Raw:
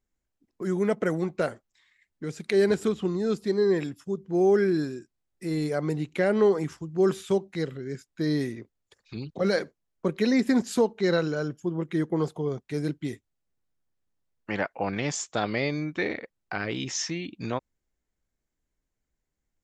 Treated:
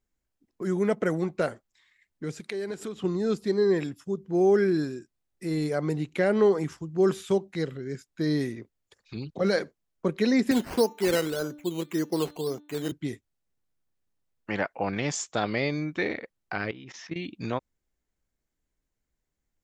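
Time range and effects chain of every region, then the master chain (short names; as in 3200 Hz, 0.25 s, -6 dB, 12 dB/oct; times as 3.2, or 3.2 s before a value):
2.4–3.04 compressor 2.5:1, threshold -33 dBFS + low shelf 130 Hz -10.5 dB
10.51–12.92 HPF 210 Hz + decimation with a swept rate 10×, swing 60% 1.8 Hz + de-hum 296.1 Hz, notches 14
16.71–17.16 LPF 2800 Hz + level quantiser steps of 15 dB
whole clip: dry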